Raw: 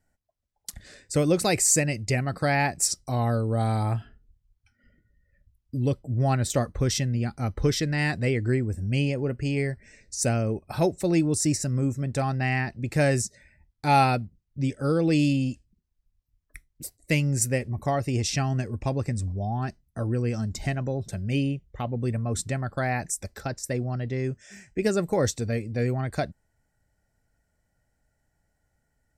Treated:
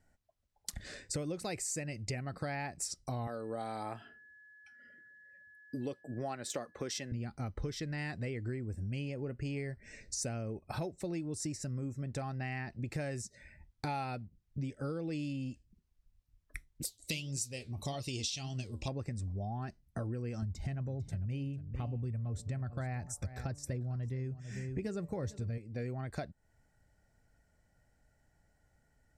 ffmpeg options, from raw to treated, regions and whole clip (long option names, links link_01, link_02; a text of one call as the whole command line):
ffmpeg -i in.wav -filter_complex "[0:a]asettb=1/sr,asplit=3[link_01][link_02][link_03];[link_01]atrim=end=3.274[link_04];[link_02]atrim=start=3.27:end=7.12,asetpts=PTS-STARTPTS,afade=type=in:duration=0.004:curve=qsin,afade=type=out:start_time=3.846:duration=0.004:curve=qsin,highpass=310,aeval=exprs='val(0)+0.00126*sin(2*PI*1700*n/s)':channel_layout=same[link_05];[link_03]atrim=start=7.116[link_06];[link_04][link_05]acrossfade=duration=0.004:curve1=hsin:curve2=qsin[link_07];[link_07][link_06]acrossfade=duration=0.004:curve1=qsin:curve2=hsin,asettb=1/sr,asplit=3[link_08][link_09][link_10];[link_08]atrim=end=16.854[link_11];[link_09]atrim=start=16.85:end=18.88,asetpts=PTS-STARTPTS,afade=type=in:duration=0.004:curve=qsin,afade=type=out:start_time=2.026:duration=0.004:curve=qsin,flanger=delay=5.6:depth=7.7:regen=69:speed=1.8:shape=triangular,highshelf=frequency=2400:width_type=q:width=3:gain=12[link_12];[link_10]atrim=start=18.876[link_13];[link_11][link_12]acrossfade=duration=0.004:curve1=hsin:curve2=qsin[link_14];[link_14][link_13]acrossfade=duration=0.004:curve1=qsin:curve2=hsin,asettb=1/sr,asplit=3[link_15][link_16][link_17];[link_15]atrim=end=20.424[link_18];[link_16]atrim=start=20.42:end=25.58,asetpts=PTS-STARTPTS,afade=type=in:duration=0.004:curve=qsin,afade=type=out:start_time=5.156:duration=0.004:curve=qsin,equalizer=frequency=81:width=0.63:gain=13.5,bandreject=frequency=145.2:width_type=h:width=4,bandreject=frequency=290.4:width_type=h:width=4,bandreject=frequency=435.6:width_type=h:width=4,bandreject=frequency=580.8:width_type=h:width=4,bandreject=frequency=726:width_type=h:width=4,bandreject=frequency=871.2:width_type=h:width=4,bandreject=frequency=1016.4:width_type=h:width=4,bandreject=frequency=1161.6:width_type=h:width=4,aecho=1:1:448:0.141,atrim=end_sample=227556[link_19];[link_17]atrim=start=25.576[link_20];[link_18][link_19]acrossfade=duration=0.004:curve1=hsin:curve2=qsin[link_21];[link_21][link_20]acrossfade=duration=0.004:curve1=qsin:curve2=hsin,highshelf=frequency=11000:gain=-10,acompressor=threshold=-38dB:ratio=8,volume=2dB" out.wav